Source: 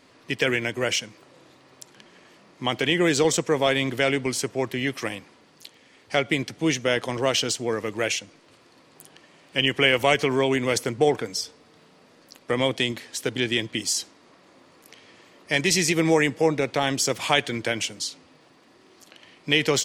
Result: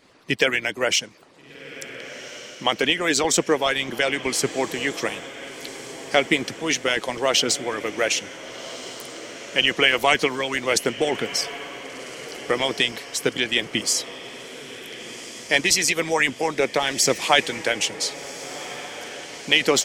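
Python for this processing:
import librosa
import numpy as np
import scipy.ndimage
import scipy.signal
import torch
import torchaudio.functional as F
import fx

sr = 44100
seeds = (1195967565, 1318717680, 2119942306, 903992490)

y = fx.hpss(x, sr, part='harmonic', gain_db=-16)
y = fx.echo_diffused(y, sr, ms=1468, feedback_pct=56, wet_db=-14)
y = y * librosa.db_to_amplitude(5.0)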